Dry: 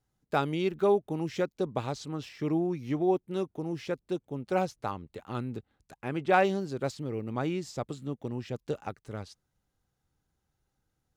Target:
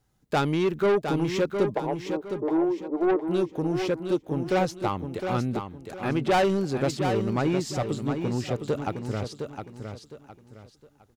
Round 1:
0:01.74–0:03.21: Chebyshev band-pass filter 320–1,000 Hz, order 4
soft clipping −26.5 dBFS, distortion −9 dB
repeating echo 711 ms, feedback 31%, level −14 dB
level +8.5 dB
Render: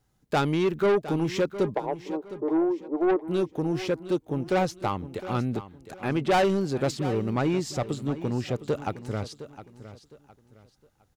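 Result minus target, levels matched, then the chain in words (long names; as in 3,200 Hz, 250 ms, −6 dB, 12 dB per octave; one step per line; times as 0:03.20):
echo-to-direct −7 dB
0:01.74–0:03.21: Chebyshev band-pass filter 320–1,000 Hz, order 4
soft clipping −26.5 dBFS, distortion −9 dB
repeating echo 711 ms, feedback 31%, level −7 dB
level +8.5 dB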